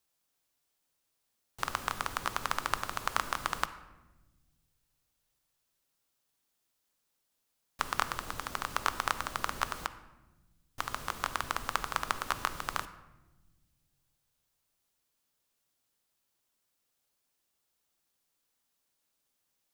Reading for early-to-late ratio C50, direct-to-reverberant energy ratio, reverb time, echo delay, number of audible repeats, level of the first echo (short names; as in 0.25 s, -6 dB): 13.5 dB, 11.5 dB, 1.1 s, none, none, none